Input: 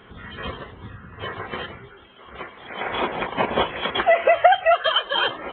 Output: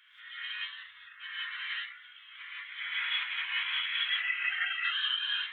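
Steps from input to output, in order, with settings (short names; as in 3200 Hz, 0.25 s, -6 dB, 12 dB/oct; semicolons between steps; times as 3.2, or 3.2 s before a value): inverse Chebyshev high-pass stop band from 680 Hz, stop band 50 dB; compressor, threshold -29 dBFS, peak gain reduction 11.5 dB; non-linear reverb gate 0.21 s rising, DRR -7.5 dB; gain -6.5 dB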